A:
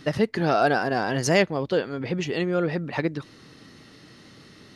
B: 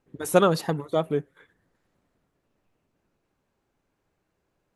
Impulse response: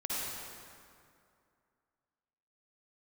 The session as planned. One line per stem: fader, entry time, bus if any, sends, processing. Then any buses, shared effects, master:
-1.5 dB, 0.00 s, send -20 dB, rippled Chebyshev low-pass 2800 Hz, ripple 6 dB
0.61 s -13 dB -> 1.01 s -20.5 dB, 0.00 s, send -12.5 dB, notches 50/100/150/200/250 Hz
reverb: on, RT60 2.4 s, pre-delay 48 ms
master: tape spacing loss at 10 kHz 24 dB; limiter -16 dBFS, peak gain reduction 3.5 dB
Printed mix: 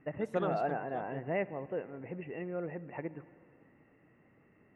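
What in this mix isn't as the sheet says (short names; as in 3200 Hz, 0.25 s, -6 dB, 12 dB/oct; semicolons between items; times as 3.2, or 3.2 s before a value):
stem A -1.5 dB -> -10.0 dB; stem B: send off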